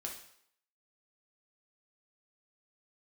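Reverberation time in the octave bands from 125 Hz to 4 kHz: 0.50 s, 0.60 s, 0.65 s, 0.70 s, 0.65 s, 0.65 s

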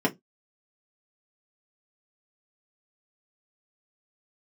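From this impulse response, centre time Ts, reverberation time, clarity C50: 9 ms, 0.15 s, 23.0 dB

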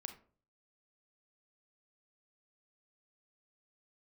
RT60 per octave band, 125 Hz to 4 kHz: 0.70 s, 0.55 s, 0.50 s, 0.40 s, 0.30 s, 0.25 s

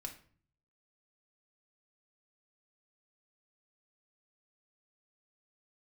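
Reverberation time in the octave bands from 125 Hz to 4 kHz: 0.90 s, 0.70 s, 0.50 s, 0.45 s, 0.40 s, 0.35 s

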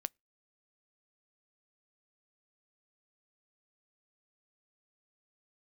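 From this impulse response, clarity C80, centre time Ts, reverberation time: 45.0 dB, 1 ms, no single decay rate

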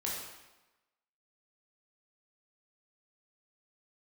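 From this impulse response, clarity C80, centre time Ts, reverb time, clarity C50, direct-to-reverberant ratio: 3.5 dB, 67 ms, 1.1 s, 1.0 dB, -5.0 dB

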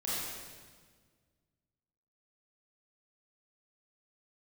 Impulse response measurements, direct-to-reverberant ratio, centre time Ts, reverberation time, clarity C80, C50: -9.5 dB, 125 ms, 1.6 s, -1.5 dB, -4.0 dB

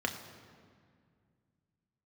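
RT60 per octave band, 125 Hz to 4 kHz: 3.2 s, 2.9 s, 2.2 s, 2.0 s, 1.8 s, 1.4 s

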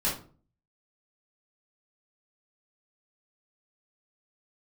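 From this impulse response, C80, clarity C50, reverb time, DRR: 13.0 dB, 6.0 dB, 0.40 s, -7.5 dB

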